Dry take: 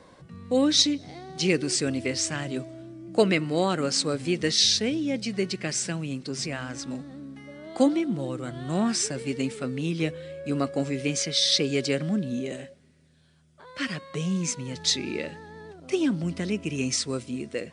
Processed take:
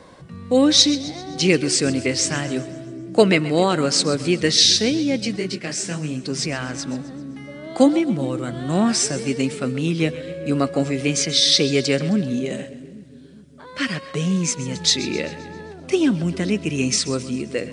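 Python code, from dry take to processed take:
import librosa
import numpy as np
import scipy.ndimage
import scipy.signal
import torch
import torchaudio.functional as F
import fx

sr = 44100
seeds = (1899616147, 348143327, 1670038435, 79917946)

y = fx.echo_split(x, sr, split_hz=410.0, low_ms=408, high_ms=131, feedback_pct=52, wet_db=-16.0)
y = fx.detune_double(y, sr, cents=50, at=(5.36, 6.24))
y = y * 10.0 ** (6.5 / 20.0)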